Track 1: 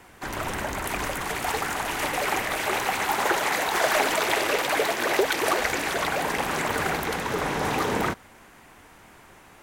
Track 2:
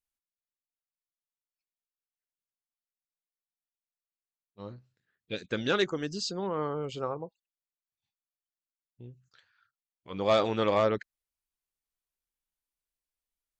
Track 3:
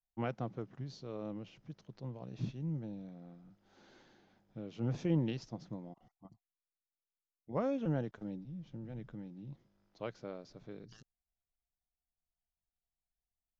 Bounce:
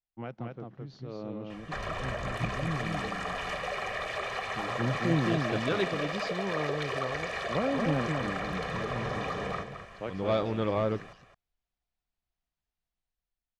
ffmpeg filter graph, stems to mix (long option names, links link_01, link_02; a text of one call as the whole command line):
ffmpeg -i stem1.wav -i stem2.wav -i stem3.wav -filter_complex "[0:a]aecho=1:1:1.7:0.85,acompressor=threshold=-32dB:ratio=5,adelay=1500,volume=-7.5dB,asplit=2[link_01][link_02];[link_02]volume=-9dB[link_03];[1:a]lowshelf=frequency=250:gain=11.5,volume=-13dB[link_04];[2:a]volume=-3dB,asplit=2[link_05][link_06];[link_06]volume=-4dB[link_07];[link_03][link_07]amix=inputs=2:normalize=0,aecho=0:1:215:1[link_08];[link_01][link_04][link_05][link_08]amix=inputs=4:normalize=0,lowpass=4200,dynaudnorm=framelen=150:gausssize=13:maxgain=7dB" out.wav